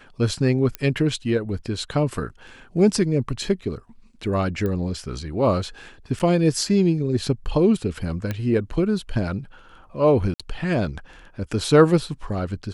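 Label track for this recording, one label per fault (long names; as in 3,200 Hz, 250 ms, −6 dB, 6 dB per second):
0.750000	0.750000	click −12 dBFS
4.660000	4.660000	click −16 dBFS
6.190000	6.200000	drop-out 8.5 ms
8.310000	8.310000	click −13 dBFS
10.340000	10.400000	drop-out 56 ms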